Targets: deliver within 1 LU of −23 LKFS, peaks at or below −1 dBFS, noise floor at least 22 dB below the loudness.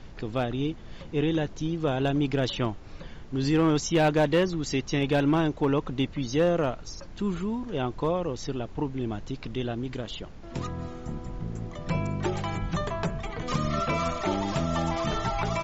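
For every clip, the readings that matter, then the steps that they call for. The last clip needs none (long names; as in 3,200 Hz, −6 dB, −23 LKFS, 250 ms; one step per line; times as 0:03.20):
share of clipped samples 0.4%; peaks flattened at −16.5 dBFS; background noise floor −43 dBFS; target noise floor −51 dBFS; integrated loudness −28.5 LKFS; sample peak −16.5 dBFS; target loudness −23.0 LKFS
→ clipped peaks rebuilt −16.5 dBFS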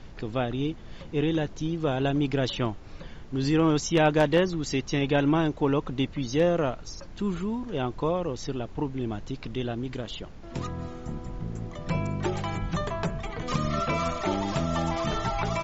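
share of clipped samples 0.0%; background noise floor −43 dBFS; target noise floor −50 dBFS
→ noise reduction from a noise print 7 dB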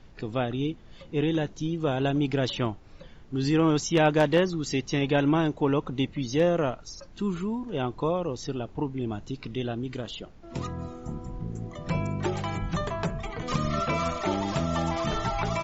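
background noise floor −49 dBFS; target noise floor −50 dBFS
→ noise reduction from a noise print 6 dB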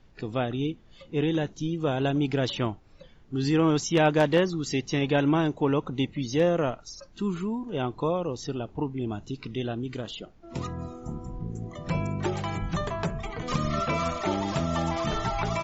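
background noise floor −54 dBFS; integrated loudness −28.0 LKFS; sample peak −8.0 dBFS; target loudness −23.0 LKFS
→ level +5 dB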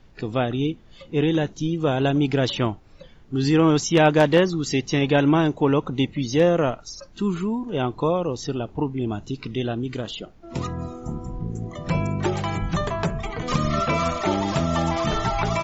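integrated loudness −23.0 LKFS; sample peak −3.0 dBFS; background noise floor −49 dBFS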